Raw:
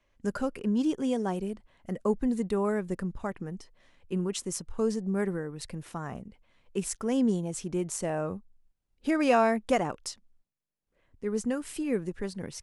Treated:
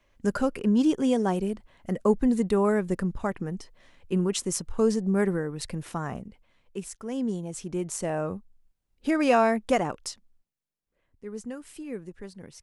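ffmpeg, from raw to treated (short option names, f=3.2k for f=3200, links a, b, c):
-af "volume=14dB,afade=t=out:st=5.99:d=0.93:silence=0.251189,afade=t=in:st=6.92:d=1.23:silence=0.354813,afade=t=out:st=10.03:d=1.22:silence=0.354813"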